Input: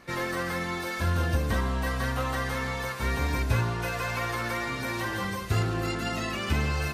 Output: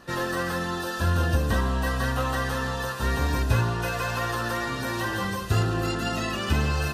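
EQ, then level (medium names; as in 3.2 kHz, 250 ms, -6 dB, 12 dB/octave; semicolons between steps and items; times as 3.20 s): Butterworth band-stop 2.2 kHz, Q 5.4; +3.0 dB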